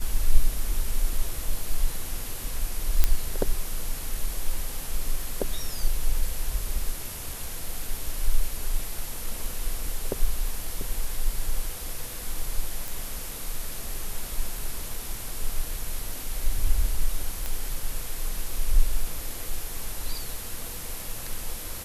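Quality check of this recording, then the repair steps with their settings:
3.04 s: pop -5 dBFS
12.88 s: pop
17.46 s: pop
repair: de-click

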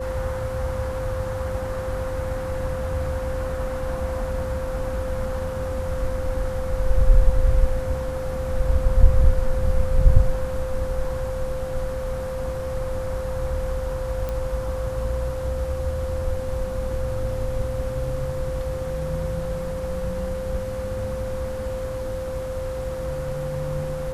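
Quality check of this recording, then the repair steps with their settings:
whine 520 Hz -28 dBFS
14.29 s: pop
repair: de-click; band-stop 520 Hz, Q 30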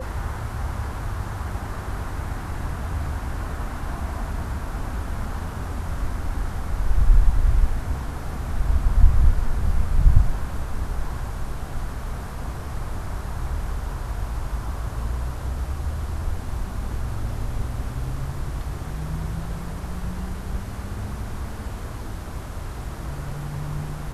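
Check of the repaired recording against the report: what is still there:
nothing left

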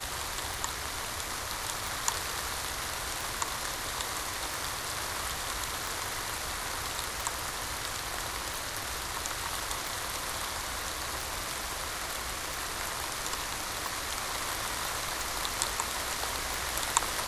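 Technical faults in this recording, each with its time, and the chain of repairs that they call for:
tick 45 rpm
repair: de-click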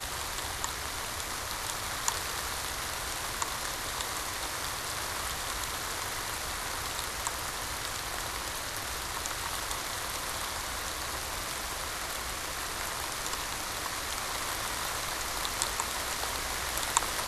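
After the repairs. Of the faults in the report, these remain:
nothing left

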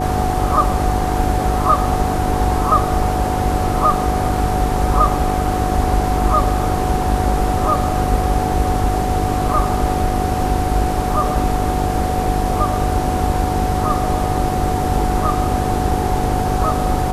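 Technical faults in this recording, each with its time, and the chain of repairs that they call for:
buzz 50 Hz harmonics 9 -23 dBFS
whine 740 Hz -21 dBFS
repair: de-hum 50 Hz, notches 9; band-stop 740 Hz, Q 30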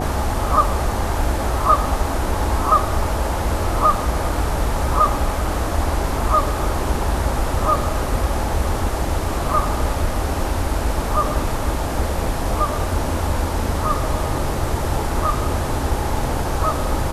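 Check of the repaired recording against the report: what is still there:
nothing left

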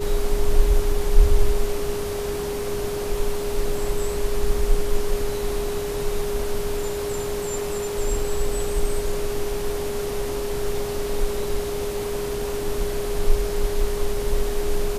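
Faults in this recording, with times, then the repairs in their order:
whine 410 Hz -26 dBFS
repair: band-stop 410 Hz, Q 30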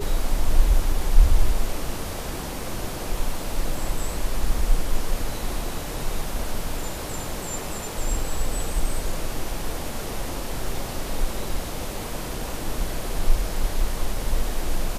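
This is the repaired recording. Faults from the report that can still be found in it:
nothing left

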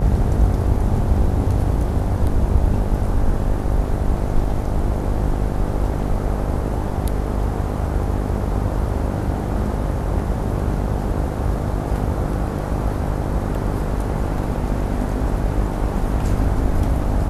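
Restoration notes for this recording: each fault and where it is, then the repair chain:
buzz 50 Hz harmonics 18 -24 dBFS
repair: de-hum 50 Hz, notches 18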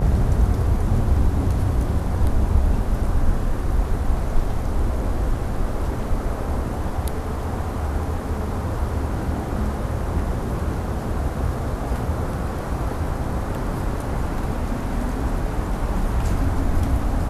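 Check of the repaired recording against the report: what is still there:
nothing left

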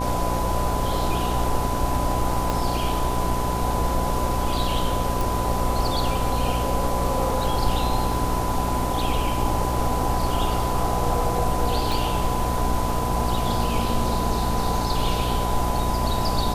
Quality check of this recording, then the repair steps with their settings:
buzz 60 Hz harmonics 15 -27 dBFS
whine 1 kHz -28 dBFS
2.50 s: pop
5.21 s: pop
11.92 s: pop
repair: de-click; band-stop 1 kHz, Q 30; de-hum 60 Hz, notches 15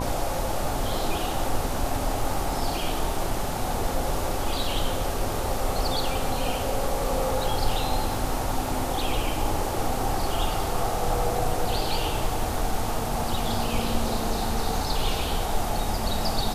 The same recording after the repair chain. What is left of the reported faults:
2.50 s: pop
11.92 s: pop

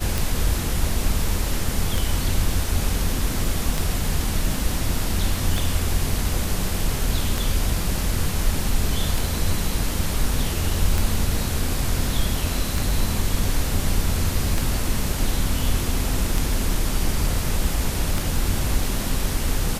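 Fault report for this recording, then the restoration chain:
tick 33 1/3 rpm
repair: de-click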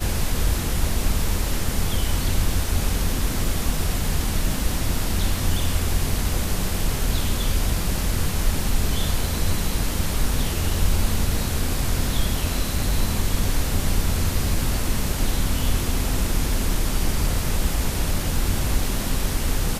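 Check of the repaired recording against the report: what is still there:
nothing left

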